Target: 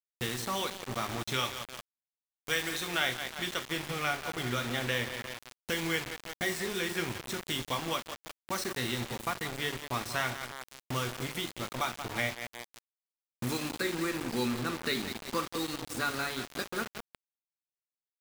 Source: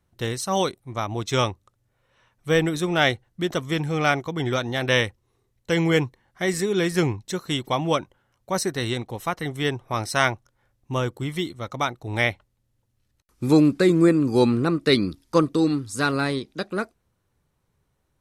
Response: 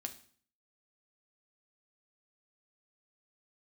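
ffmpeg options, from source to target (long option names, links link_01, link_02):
-filter_complex "[0:a]aecho=1:1:176|352|528|704|880:0.2|0.0978|0.0479|0.0235|0.0115,acrossover=split=1200|4200[link_01][link_02][link_03];[link_01]acompressor=threshold=-34dB:ratio=4[link_04];[link_02]acompressor=threshold=-29dB:ratio=4[link_05];[link_03]acompressor=threshold=-40dB:ratio=4[link_06];[link_04][link_05][link_06]amix=inputs=3:normalize=0,asettb=1/sr,asplit=3[link_07][link_08][link_09];[link_07]atrim=end=1.344[link_10];[link_08]atrim=start=1.34:end=3.7,asetpts=PTS-STARTPTS,afade=type=in:duration=0.004:curve=qsin,afade=type=out:start_time=2.356:duration=0.004:curve=qsin,tiltshelf=frequency=800:gain=-3.5[link_11];[link_09]atrim=start=3.696[link_12];[link_10][link_11]acrossfade=duration=0.004:curve1=hsin:curve2=qsin[link_13];[link_13][link_12]acrossfade=duration=0.004:curve1=qsin:curve2=hsin[link_14];[1:a]atrim=start_sample=2205[link_15];[link_14][link_15]afir=irnorm=-1:irlink=0,acrusher=bits=5:mix=0:aa=0.000001,adynamicequalizer=threshold=0.00631:dfrequency=4000:dqfactor=0.7:tfrequency=4000:tqfactor=0.7:attack=5:release=100:ratio=0.375:range=2.5:mode=cutabove:tftype=highshelf"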